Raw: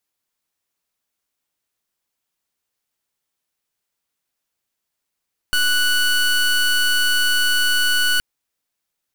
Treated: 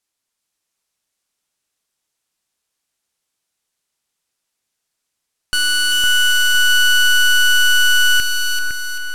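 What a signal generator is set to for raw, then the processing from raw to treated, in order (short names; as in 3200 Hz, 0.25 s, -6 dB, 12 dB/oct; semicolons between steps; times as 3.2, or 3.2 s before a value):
pulse 1480 Hz, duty 22% -17 dBFS 2.67 s
LPF 10000 Hz 12 dB/oct; high shelf 4300 Hz +6.5 dB; split-band echo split 2400 Hz, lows 0.508 s, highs 0.388 s, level -3.5 dB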